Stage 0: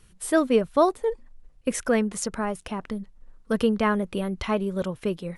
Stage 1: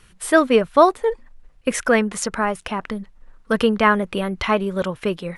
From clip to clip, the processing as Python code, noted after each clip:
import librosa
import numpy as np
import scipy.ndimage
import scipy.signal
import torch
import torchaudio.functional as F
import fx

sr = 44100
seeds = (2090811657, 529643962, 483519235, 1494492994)

y = fx.peak_eq(x, sr, hz=1700.0, db=8.0, octaves=2.8)
y = y * librosa.db_to_amplitude(2.5)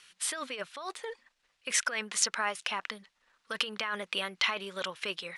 y = fx.over_compress(x, sr, threshold_db=-20.0, ratio=-1.0)
y = fx.bandpass_q(y, sr, hz=4200.0, q=0.88)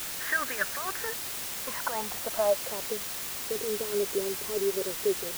y = fx.filter_sweep_lowpass(x, sr, from_hz=1700.0, to_hz=410.0, start_s=0.92, end_s=3.1, q=7.4)
y = fx.quant_dither(y, sr, seeds[0], bits=6, dither='triangular')